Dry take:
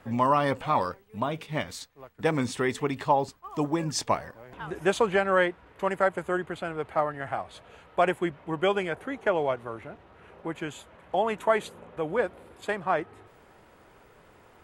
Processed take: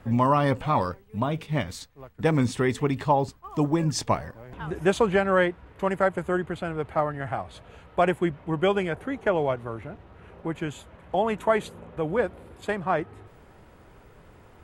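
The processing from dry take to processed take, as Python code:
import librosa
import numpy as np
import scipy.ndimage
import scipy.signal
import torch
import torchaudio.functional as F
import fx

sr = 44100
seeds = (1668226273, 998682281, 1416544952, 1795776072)

y = fx.low_shelf(x, sr, hz=210.0, db=11.5)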